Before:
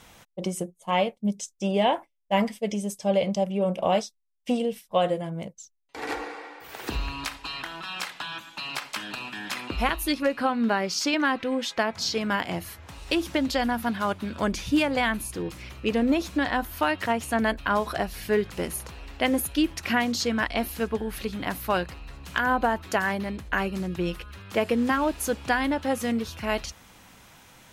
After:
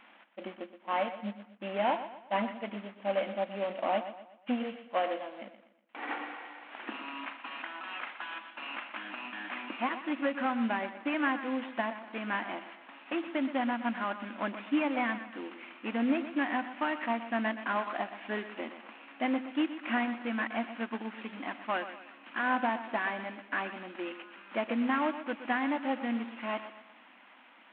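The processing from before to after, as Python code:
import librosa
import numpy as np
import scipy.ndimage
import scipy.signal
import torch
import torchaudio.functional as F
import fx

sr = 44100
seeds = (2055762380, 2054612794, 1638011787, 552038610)

p1 = fx.cvsd(x, sr, bps=16000)
p2 = fx.brickwall_highpass(p1, sr, low_hz=210.0)
p3 = fx.peak_eq(p2, sr, hz=430.0, db=-13.0, octaves=0.48)
p4 = p3 + fx.echo_feedback(p3, sr, ms=122, feedback_pct=41, wet_db=-12, dry=0)
y = p4 * librosa.db_to_amplitude(-3.0)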